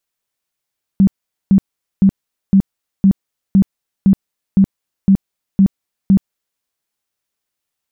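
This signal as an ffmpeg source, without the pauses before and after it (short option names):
-f lavfi -i "aevalsrc='0.531*sin(2*PI*194*mod(t,0.51))*lt(mod(t,0.51),14/194)':d=5.61:s=44100"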